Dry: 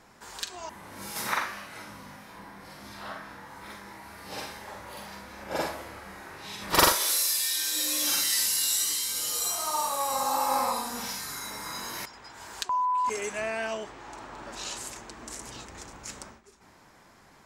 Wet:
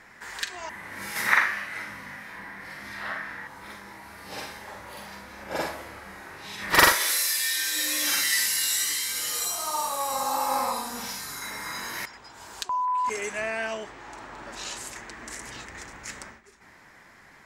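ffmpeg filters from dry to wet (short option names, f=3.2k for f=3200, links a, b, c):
-af "asetnsamples=n=441:p=0,asendcmd='3.47 equalizer g 3.5;6.58 equalizer g 11.5;9.45 equalizer g 1.5;11.42 equalizer g 8.5;12.17 equalizer g -1.5;12.88 equalizer g 5;14.95 equalizer g 11',equalizer=f=1.9k:t=o:w=0.71:g=14.5"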